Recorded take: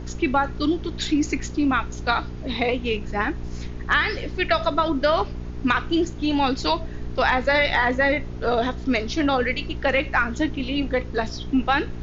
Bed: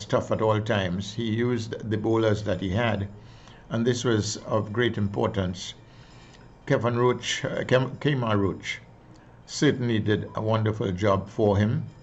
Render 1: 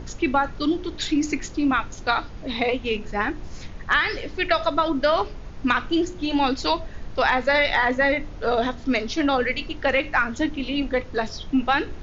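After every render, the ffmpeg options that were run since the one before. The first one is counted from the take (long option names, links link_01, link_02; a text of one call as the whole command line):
ffmpeg -i in.wav -af "bandreject=frequency=60:width_type=h:width=4,bandreject=frequency=120:width_type=h:width=4,bandreject=frequency=180:width_type=h:width=4,bandreject=frequency=240:width_type=h:width=4,bandreject=frequency=300:width_type=h:width=4,bandreject=frequency=360:width_type=h:width=4,bandreject=frequency=420:width_type=h:width=4" out.wav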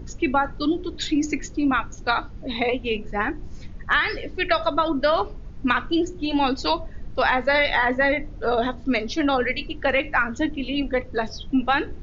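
ffmpeg -i in.wav -af "afftdn=noise_reduction=10:noise_floor=-38" out.wav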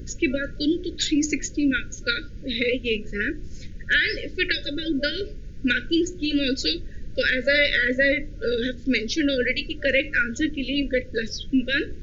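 ffmpeg -i in.wav -af "highshelf=frequency=5300:gain=11,afftfilt=real='re*(1-between(b*sr/4096,590,1400))':imag='im*(1-between(b*sr/4096,590,1400))':win_size=4096:overlap=0.75" out.wav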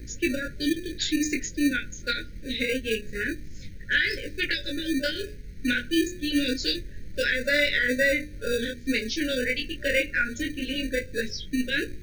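ffmpeg -i in.wav -filter_complex "[0:a]flanger=delay=20:depth=4.6:speed=0.25,acrossover=split=610|1700[link_01][link_02][link_03];[link_01]acrusher=samples=21:mix=1:aa=0.000001[link_04];[link_04][link_02][link_03]amix=inputs=3:normalize=0" out.wav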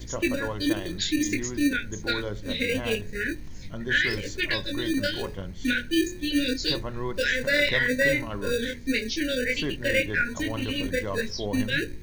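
ffmpeg -i in.wav -i bed.wav -filter_complex "[1:a]volume=-10.5dB[link_01];[0:a][link_01]amix=inputs=2:normalize=0" out.wav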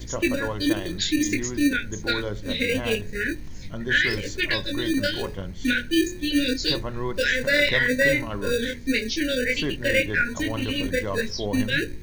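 ffmpeg -i in.wav -af "volume=2.5dB" out.wav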